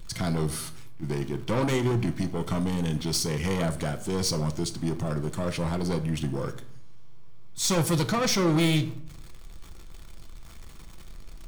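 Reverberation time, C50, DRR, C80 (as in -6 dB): 0.60 s, 15.5 dB, 7.5 dB, 19.0 dB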